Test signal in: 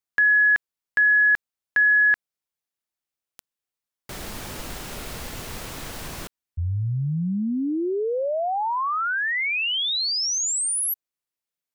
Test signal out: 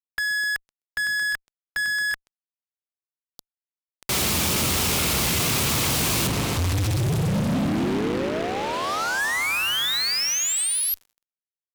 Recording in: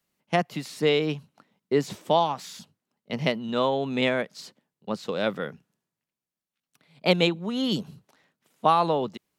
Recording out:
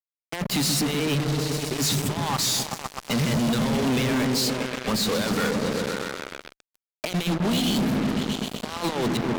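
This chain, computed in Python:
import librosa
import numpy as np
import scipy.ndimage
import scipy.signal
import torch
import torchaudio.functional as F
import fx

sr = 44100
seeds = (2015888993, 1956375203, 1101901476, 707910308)

p1 = fx.noise_reduce_blind(x, sr, reduce_db=6)
p2 = fx.low_shelf(p1, sr, hz=280.0, db=-5.5)
p3 = fx.hum_notches(p2, sr, base_hz=50, count=5)
p4 = fx.over_compress(p3, sr, threshold_db=-35.0, ratio=-1.0)
p5 = scipy.signal.sosfilt(scipy.signal.butter(4, 63.0, 'highpass', fs=sr, output='sos'), p4)
p6 = p5 + fx.echo_opening(p5, sr, ms=127, hz=200, octaves=1, feedback_pct=70, wet_db=0, dry=0)
p7 = fx.rev_fdn(p6, sr, rt60_s=2.2, lf_ratio=1.3, hf_ratio=0.5, size_ms=15.0, drr_db=19.0)
p8 = fx.dynamic_eq(p7, sr, hz=650.0, q=0.82, threshold_db=-47.0, ratio=6.0, max_db=-7)
p9 = fx.fuzz(p8, sr, gain_db=45.0, gate_db=-43.0)
y = F.gain(torch.from_numpy(p9), -7.5).numpy()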